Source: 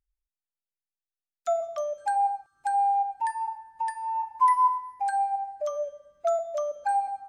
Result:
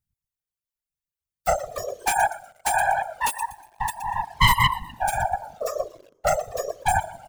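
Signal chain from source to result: tracing distortion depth 0.42 ms; 1.99–3.51 s: tilt EQ +2.5 dB/octave; on a send: frequency-shifting echo 121 ms, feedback 38%, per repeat -50 Hz, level -10.5 dB; on the sum: whisper effect; treble shelf 7 kHz +7.5 dB; in parallel at -5.5 dB: bit crusher 7-bit; on the sum: reverb removal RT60 1.8 s; slew-rate limiter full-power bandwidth 510 Hz

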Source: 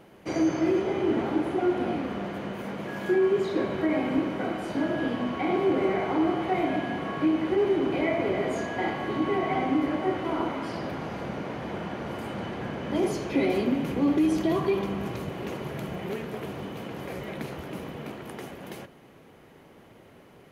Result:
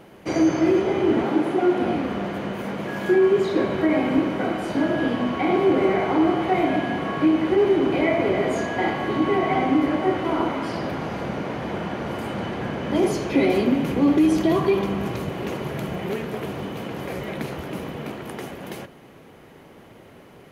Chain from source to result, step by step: 1.23–1.83 s: high-pass 130 Hz 24 dB/octave; trim +5.5 dB

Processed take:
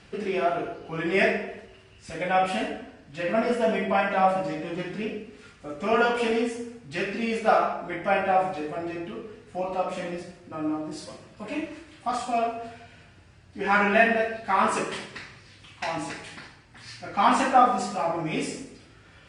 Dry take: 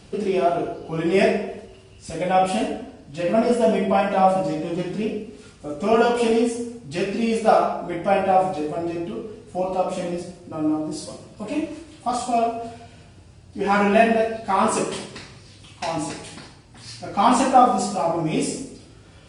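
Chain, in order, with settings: low-pass 8.8 kHz 12 dB/octave; peaking EQ 1.8 kHz +11 dB 1.4 oct; trim -7 dB

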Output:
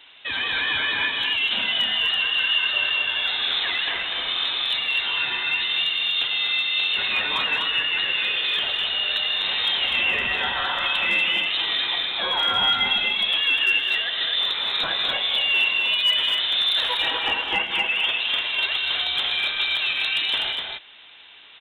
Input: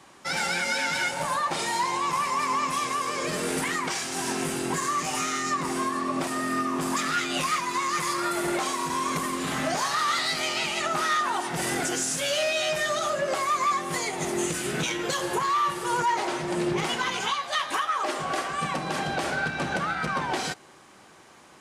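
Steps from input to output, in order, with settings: dynamic bell 1.6 kHz, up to -3 dB, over -37 dBFS, Q 1.7; frequency inversion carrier 3.9 kHz; hard clipper -19.5 dBFS, distortion -35 dB; bass shelf 220 Hz -12 dB; on a send: multi-tap echo 109/159/205/248 ms -16/-15/-10/-4.5 dB; on the sum: trim +4 dB

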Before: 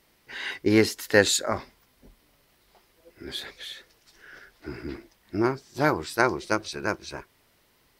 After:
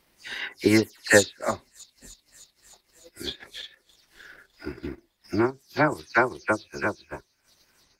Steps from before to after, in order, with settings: delay that grows with frequency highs early, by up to 161 ms; feedback echo behind a high-pass 303 ms, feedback 73%, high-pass 4.5 kHz, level -16.5 dB; transient shaper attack +5 dB, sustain -11 dB; trim -1 dB

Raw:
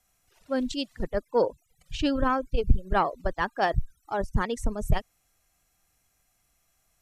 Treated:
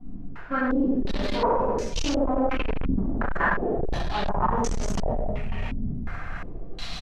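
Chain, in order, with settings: jump at every zero crossing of -28 dBFS; gate with hold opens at -28 dBFS; in parallel at -2 dB: peak limiter -18.5 dBFS, peak gain reduction 11 dB; on the sum: delay 546 ms -16 dB; simulated room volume 640 m³, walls mixed, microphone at 8.6 m; saturation -6 dBFS, distortion -4 dB; reverse; compression 6:1, threshold -26 dBFS, peak gain reduction 16.5 dB; reverse; step-sequenced low-pass 2.8 Hz 260–6100 Hz

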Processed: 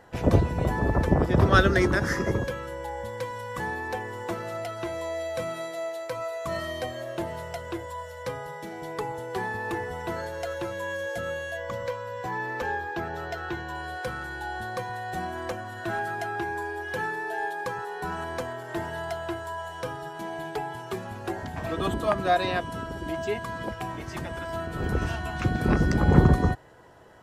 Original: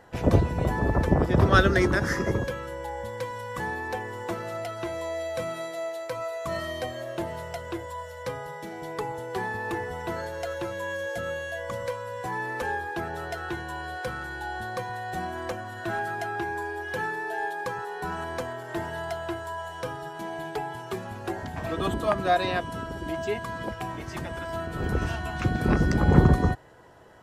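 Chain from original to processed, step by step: 11.57–13.75 s: peaking EQ 9.8 kHz -12.5 dB 0.54 oct

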